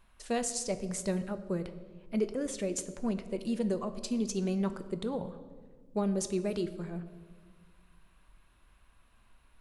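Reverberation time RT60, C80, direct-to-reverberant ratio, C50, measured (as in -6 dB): 1.5 s, 14.0 dB, 9.5 dB, 13.0 dB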